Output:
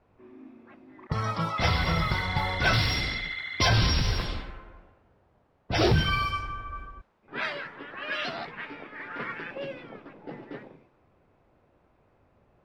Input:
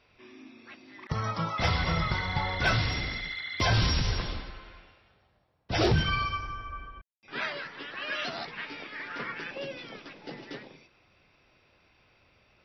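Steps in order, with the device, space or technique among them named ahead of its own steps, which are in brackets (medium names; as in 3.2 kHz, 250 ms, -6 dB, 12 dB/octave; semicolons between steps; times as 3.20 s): cassette deck with a dynamic noise filter (white noise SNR 26 dB; level-controlled noise filter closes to 760 Hz, open at -25 dBFS); 2.73–3.69 s: treble shelf 3.9 kHz +7 dB; trim +2 dB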